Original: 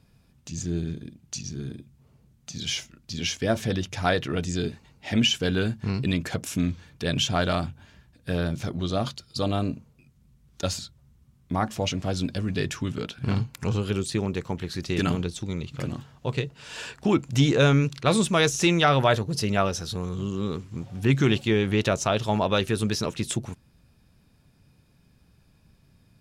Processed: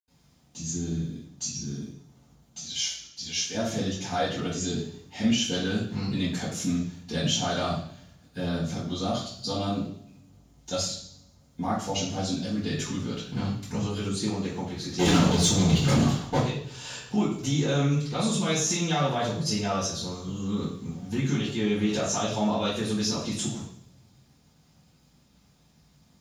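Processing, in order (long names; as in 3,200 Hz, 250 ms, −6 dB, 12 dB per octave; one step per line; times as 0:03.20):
0:02.53–0:03.47: parametric band 190 Hz −13 dB 2.8 octaves
0:14.91–0:16.33: leveller curve on the samples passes 5
brickwall limiter −15 dBFS, peak gain reduction 7 dB
parametric band 7,800 Hz +5.5 dB 1.8 octaves
bit-depth reduction 10 bits, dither none
convolution reverb RT60 0.65 s, pre-delay 77 ms, DRR −60 dB
level −6.5 dB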